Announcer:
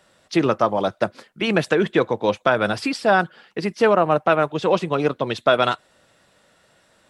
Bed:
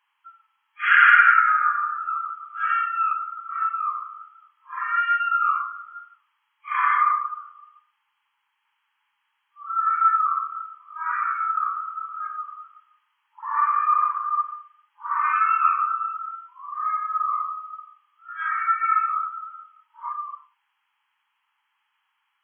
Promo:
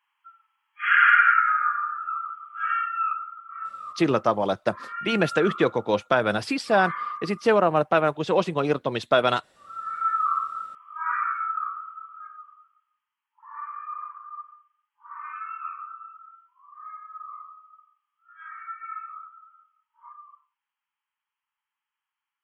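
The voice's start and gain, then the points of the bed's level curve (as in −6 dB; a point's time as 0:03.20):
3.65 s, −3.0 dB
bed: 0:03.08 −3 dB
0:03.80 −12 dB
0:09.84 −12 dB
0:10.31 −0.5 dB
0:11.12 −0.5 dB
0:12.76 −15.5 dB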